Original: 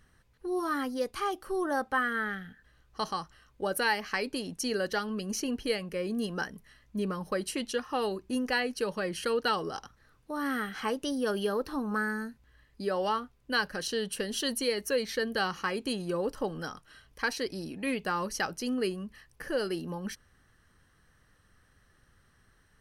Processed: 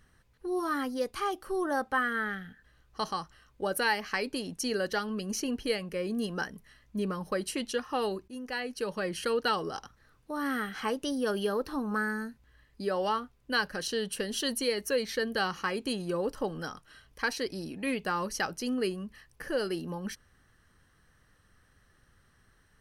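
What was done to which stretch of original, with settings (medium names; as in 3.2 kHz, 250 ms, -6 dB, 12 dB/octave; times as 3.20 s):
8.28–9.04 s: fade in, from -13.5 dB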